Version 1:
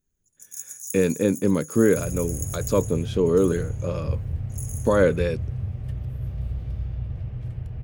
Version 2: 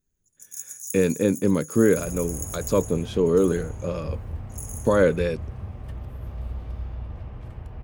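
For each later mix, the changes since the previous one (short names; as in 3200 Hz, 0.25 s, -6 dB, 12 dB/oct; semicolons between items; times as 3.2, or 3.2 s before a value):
second sound: add graphic EQ 125/250/1000 Hz -11/+4/+10 dB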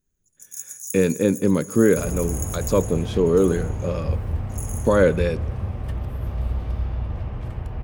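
second sound +6.5 dB; reverb: on, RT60 1.9 s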